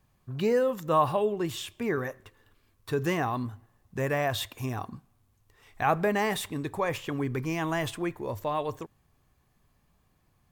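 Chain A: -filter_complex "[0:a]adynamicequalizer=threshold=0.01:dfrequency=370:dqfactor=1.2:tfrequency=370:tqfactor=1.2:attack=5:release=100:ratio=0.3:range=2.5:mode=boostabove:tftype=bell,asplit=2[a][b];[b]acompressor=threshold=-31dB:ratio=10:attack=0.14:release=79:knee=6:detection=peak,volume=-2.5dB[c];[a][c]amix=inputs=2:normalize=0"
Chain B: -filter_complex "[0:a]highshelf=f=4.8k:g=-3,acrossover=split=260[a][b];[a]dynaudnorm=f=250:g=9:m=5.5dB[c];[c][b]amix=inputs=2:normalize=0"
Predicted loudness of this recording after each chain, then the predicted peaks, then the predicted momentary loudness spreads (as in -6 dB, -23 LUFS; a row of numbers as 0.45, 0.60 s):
-26.0, -28.5 LUFS; -9.5, -10.5 dBFS; 12, 10 LU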